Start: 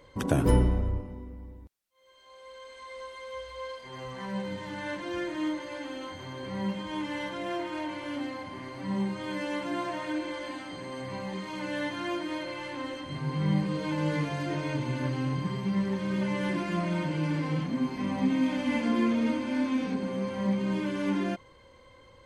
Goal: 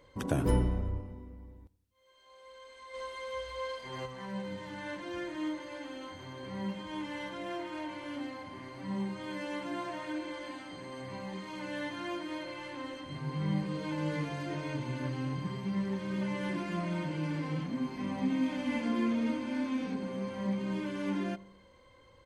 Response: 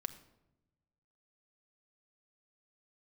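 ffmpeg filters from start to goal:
-filter_complex "[0:a]asplit=2[link_01][link_02];[link_02]adelay=87,lowpass=frequency=820:poles=1,volume=-18.5dB,asplit=2[link_03][link_04];[link_04]adelay=87,lowpass=frequency=820:poles=1,volume=0.55,asplit=2[link_05][link_06];[link_06]adelay=87,lowpass=frequency=820:poles=1,volume=0.55,asplit=2[link_07][link_08];[link_08]adelay=87,lowpass=frequency=820:poles=1,volume=0.55,asplit=2[link_09][link_10];[link_10]adelay=87,lowpass=frequency=820:poles=1,volume=0.55[link_11];[link_03][link_05][link_07][link_09][link_11]amix=inputs=5:normalize=0[link_12];[link_01][link_12]amix=inputs=2:normalize=0,asplit=3[link_13][link_14][link_15];[link_13]afade=type=out:start_time=2.93:duration=0.02[link_16];[link_14]acontrast=59,afade=type=in:start_time=2.93:duration=0.02,afade=type=out:start_time=4.05:duration=0.02[link_17];[link_15]afade=type=in:start_time=4.05:duration=0.02[link_18];[link_16][link_17][link_18]amix=inputs=3:normalize=0,volume=-5dB"

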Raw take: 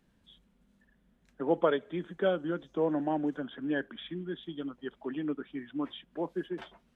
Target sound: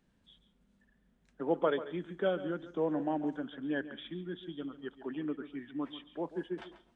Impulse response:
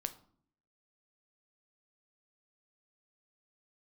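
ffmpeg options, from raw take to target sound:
-filter_complex "[0:a]asplit=2[link_01][link_02];[1:a]atrim=start_sample=2205,adelay=140[link_03];[link_02][link_03]afir=irnorm=-1:irlink=0,volume=-12.5dB[link_04];[link_01][link_04]amix=inputs=2:normalize=0,aresample=22050,aresample=44100,volume=-3dB"

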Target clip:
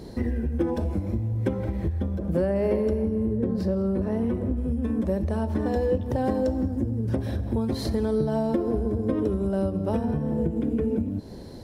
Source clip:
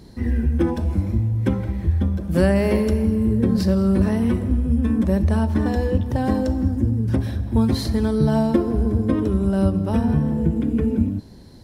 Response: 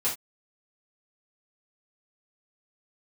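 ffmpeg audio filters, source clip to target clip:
-filter_complex "[0:a]asplit=3[link_01][link_02][link_03];[link_01]afade=type=out:start_time=2.17:duration=0.02[link_04];[link_02]highshelf=frequency=2300:gain=-9,afade=type=in:start_time=2.17:duration=0.02,afade=type=out:start_time=4.56:duration=0.02[link_05];[link_03]afade=type=in:start_time=4.56:duration=0.02[link_06];[link_04][link_05][link_06]amix=inputs=3:normalize=0,acompressor=threshold=-26dB:ratio=10,equalizer=frequency=510:width=1:gain=8.5,volume=1.5dB"

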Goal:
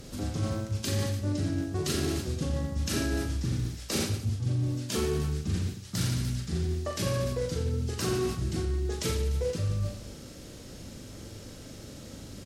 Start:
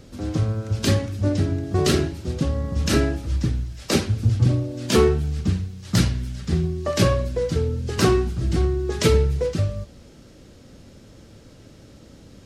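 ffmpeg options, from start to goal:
ffmpeg -i in.wav -af "aemphasis=mode=production:type=cd,aecho=1:1:40|88|145.6|214.7|297.7:0.631|0.398|0.251|0.158|0.1,areverse,acompressor=threshold=-27dB:ratio=6,areverse" out.wav

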